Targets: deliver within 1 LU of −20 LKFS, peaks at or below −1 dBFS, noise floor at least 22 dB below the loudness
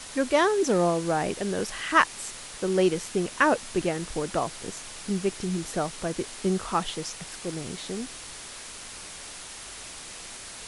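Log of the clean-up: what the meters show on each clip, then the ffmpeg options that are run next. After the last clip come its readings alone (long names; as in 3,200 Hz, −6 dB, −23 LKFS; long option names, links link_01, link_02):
background noise floor −42 dBFS; target noise floor −50 dBFS; integrated loudness −27.5 LKFS; sample peak −4.5 dBFS; target loudness −20.0 LKFS
→ -af "afftdn=noise_reduction=8:noise_floor=-42"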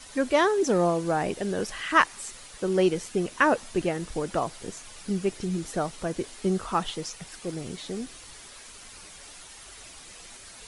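background noise floor −47 dBFS; target noise floor −50 dBFS
→ -af "afftdn=noise_reduction=6:noise_floor=-47"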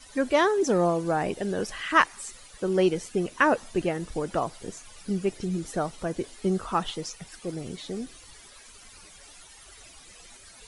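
background noise floor −51 dBFS; integrated loudness −27.5 LKFS; sample peak −4.5 dBFS; target loudness −20.0 LKFS
→ -af "volume=7.5dB,alimiter=limit=-1dB:level=0:latency=1"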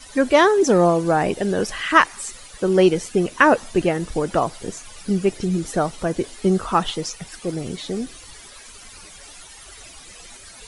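integrated loudness −20.0 LKFS; sample peak −1.0 dBFS; background noise floor −43 dBFS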